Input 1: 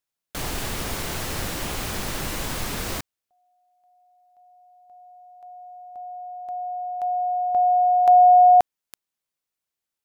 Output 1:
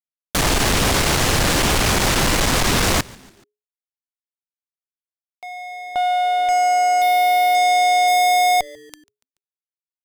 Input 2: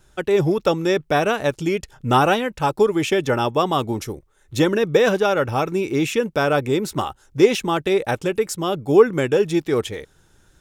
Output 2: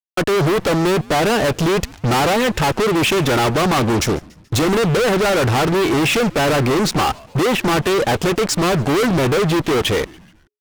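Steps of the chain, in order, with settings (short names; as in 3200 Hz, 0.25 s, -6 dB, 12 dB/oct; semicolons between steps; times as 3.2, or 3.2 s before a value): treble ducked by the level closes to 1600 Hz, closed at -13 dBFS; fuzz box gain 37 dB, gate -42 dBFS; frequency-shifting echo 0.143 s, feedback 51%, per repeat -140 Hz, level -23.5 dB; gain -1.5 dB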